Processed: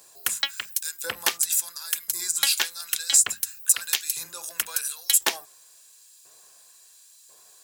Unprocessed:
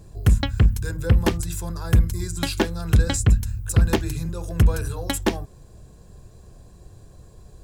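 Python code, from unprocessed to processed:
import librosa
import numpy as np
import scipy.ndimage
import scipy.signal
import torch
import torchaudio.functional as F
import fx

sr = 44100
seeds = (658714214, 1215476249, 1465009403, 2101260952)

y = fx.high_shelf(x, sr, hz=11000.0, db=6.5)
y = fx.filter_lfo_highpass(y, sr, shape='saw_up', hz=0.96, low_hz=780.0, high_hz=3000.0, q=0.77)
y = fx.high_shelf(y, sr, hz=2900.0, db=10.5)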